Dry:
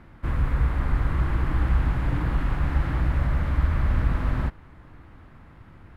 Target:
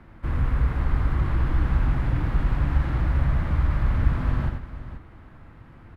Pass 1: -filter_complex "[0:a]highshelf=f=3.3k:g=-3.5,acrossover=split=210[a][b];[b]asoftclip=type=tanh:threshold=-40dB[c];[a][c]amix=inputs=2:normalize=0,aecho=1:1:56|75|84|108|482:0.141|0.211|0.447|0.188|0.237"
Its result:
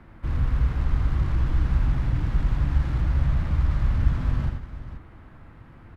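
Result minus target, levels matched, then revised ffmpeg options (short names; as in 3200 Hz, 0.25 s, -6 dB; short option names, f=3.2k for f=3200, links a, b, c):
soft clip: distortion +8 dB
-filter_complex "[0:a]highshelf=f=3.3k:g=-3.5,acrossover=split=210[a][b];[b]asoftclip=type=tanh:threshold=-31dB[c];[a][c]amix=inputs=2:normalize=0,aecho=1:1:56|75|84|108|482:0.141|0.211|0.447|0.188|0.237"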